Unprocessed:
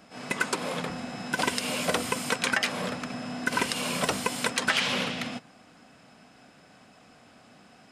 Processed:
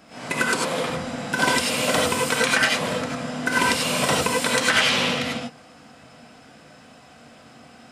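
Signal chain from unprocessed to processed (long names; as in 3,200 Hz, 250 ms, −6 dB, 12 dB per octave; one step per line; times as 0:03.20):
reverb whose tail is shaped and stops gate 120 ms rising, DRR −2.5 dB
level +2.5 dB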